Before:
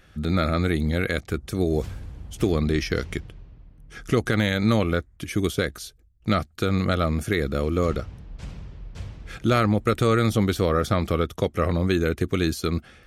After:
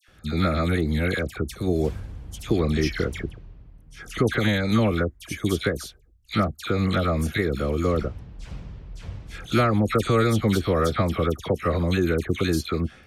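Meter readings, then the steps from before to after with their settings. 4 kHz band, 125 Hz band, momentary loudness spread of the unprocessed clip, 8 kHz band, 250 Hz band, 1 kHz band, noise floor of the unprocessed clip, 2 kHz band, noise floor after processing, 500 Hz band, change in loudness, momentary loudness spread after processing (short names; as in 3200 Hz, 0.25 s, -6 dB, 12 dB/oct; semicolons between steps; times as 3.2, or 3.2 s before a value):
0.0 dB, 0.0 dB, 18 LU, 0.0 dB, 0.0 dB, 0.0 dB, -55 dBFS, 0.0 dB, -53 dBFS, 0.0 dB, 0.0 dB, 17 LU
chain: dispersion lows, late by 84 ms, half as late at 1700 Hz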